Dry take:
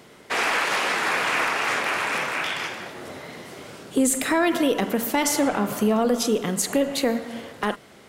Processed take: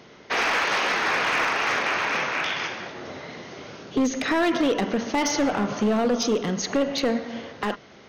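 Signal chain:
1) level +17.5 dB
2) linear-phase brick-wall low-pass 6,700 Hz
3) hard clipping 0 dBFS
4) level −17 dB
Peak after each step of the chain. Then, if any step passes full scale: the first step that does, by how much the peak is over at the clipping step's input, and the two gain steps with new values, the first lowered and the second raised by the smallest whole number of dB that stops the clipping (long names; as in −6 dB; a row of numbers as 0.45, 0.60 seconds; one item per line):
+7.5, +7.5, 0.0, −17.0 dBFS
step 1, 7.5 dB
step 1 +9.5 dB, step 4 −9 dB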